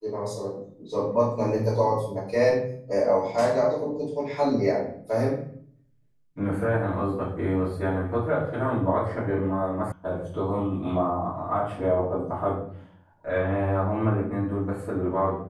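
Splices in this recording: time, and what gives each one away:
9.92 s: sound stops dead

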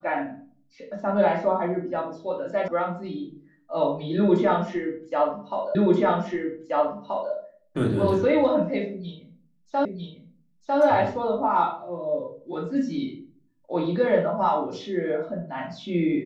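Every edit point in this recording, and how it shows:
2.68 s: sound stops dead
5.75 s: repeat of the last 1.58 s
9.85 s: repeat of the last 0.95 s

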